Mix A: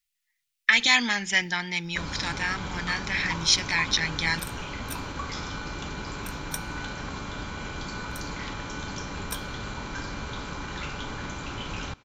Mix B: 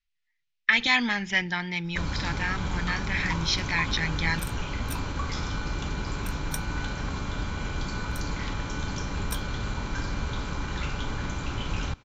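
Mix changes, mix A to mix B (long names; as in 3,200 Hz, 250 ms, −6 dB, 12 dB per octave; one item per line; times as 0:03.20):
speech: add high-frequency loss of the air 160 metres
second sound: send off
master: add low-shelf EQ 130 Hz +9.5 dB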